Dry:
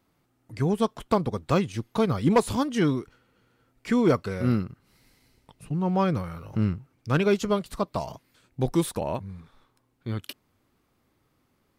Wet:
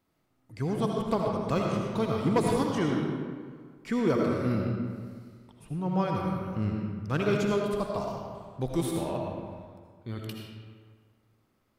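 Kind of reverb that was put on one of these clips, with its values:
comb and all-pass reverb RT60 1.8 s, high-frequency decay 0.6×, pre-delay 40 ms, DRR −0.5 dB
level −6 dB

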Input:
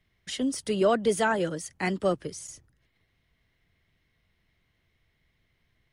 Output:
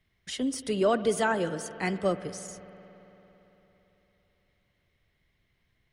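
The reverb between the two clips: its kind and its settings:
spring reverb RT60 3.8 s, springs 56 ms, chirp 80 ms, DRR 13 dB
level −1.5 dB

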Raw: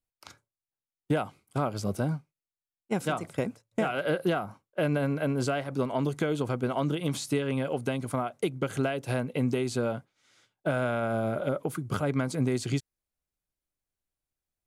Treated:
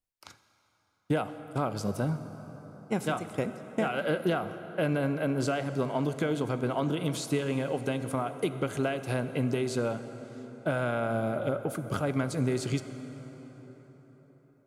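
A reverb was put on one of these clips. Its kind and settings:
dense smooth reverb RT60 4.9 s, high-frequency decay 0.55×, DRR 10 dB
level −1 dB

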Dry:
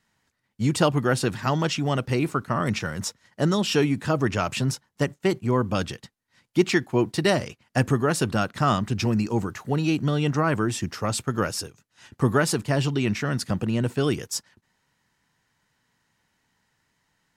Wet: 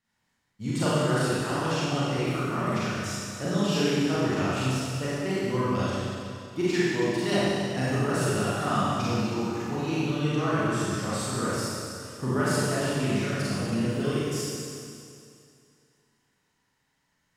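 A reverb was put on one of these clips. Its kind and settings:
four-comb reverb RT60 2.4 s, combs from 31 ms, DRR −10 dB
level −12.5 dB

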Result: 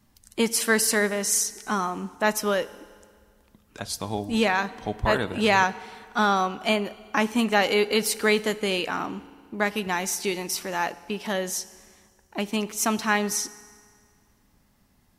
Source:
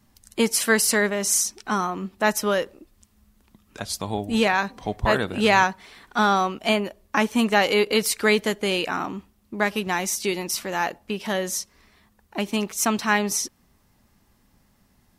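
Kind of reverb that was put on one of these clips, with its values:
feedback delay network reverb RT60 2 s, low-frequency decay 1×, high-frequency decay 0.85×, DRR 16 dB
level −2 dB

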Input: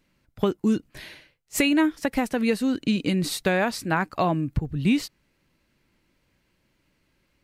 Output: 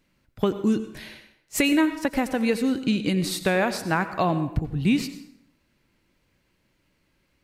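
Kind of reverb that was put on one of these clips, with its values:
dense smooth reverb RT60 0.73 s, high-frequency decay 0.75×, pre-delay 75 ms, DRR 11 dB

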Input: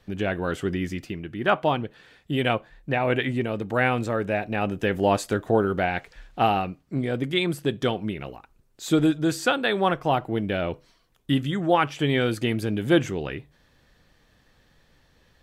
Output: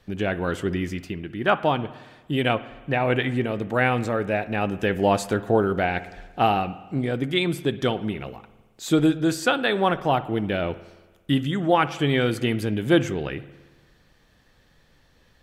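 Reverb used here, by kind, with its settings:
spring reverb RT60 1.3 s, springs 56 ms, chirp 65 ms, DRR 15.5 dB
level +1 dB

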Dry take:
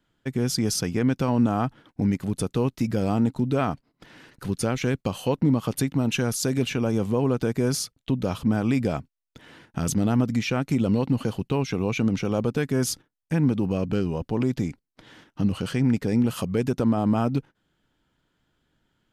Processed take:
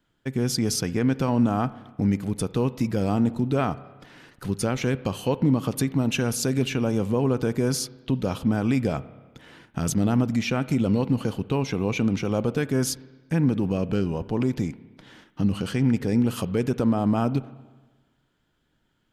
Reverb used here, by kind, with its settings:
spring reverb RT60 1.3 s, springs 30/58 ms, chirp 60 ms, DRR 16 dB

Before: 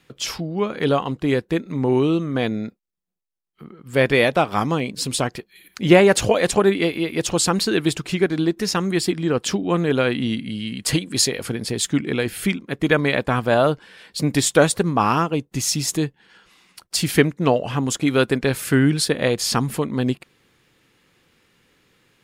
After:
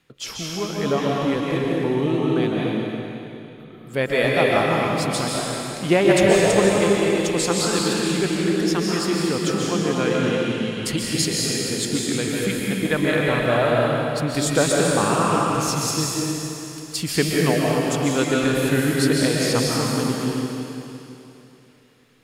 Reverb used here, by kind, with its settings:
comb and all-pass reverb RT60 3 s, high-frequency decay 1×, pre-delay 100 ms, DRR −4 dB
level −5.5 dB

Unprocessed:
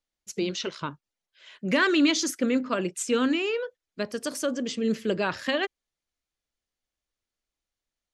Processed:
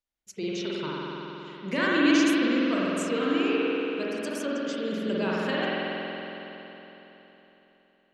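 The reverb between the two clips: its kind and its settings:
spring reverb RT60 3.7 s, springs 46 ms, chirp 45 ms, DRR −6.5 dB
level −7 dB

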